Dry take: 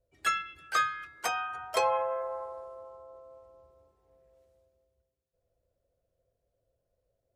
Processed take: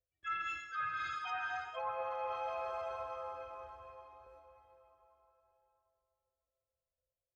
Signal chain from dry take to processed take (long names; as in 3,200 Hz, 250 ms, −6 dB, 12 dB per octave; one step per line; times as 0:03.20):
harmonic-percussive split with one part muted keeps harmonic
phase shifter 1 Hz, delay 3.7 ms, feedback 39%
noise gate with hold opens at −54 dBFS
on a send at −4 dB: high-pass filter 50 Hz + convolution reverb RT60 4.2 s, pre-delay 113 ms
on the sum: treble cut that deepens with the level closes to 2,000 Hz, closed at −25 dBFS
high-shelf EQ 11,000 Hz −5.5 dB
reversed playback
downward compressor 16 to 1, threshold −37 dBFS, peak gain reduction 16 dB
reversed playback
level +1.5 dB